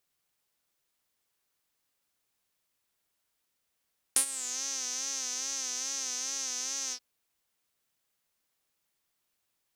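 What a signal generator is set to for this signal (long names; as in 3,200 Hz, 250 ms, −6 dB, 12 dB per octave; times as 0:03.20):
subtractive patch with vibrato C4, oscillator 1 saw, oscillator 2 triangle, interval +7 semitones, oscillator 2 level −12 dB, sub −23 dB, noise −28 dB, filter bandpass, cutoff 5,000 Hz, Q 7.7, filter envelope 1 octave, filter decay 0.41 s, filter sustain 30%, attack 1.8 ms, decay 0.09 s, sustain −16.5 dB, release 0.07 s, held 2.76 s, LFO 2.4 Hz, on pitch 79 cents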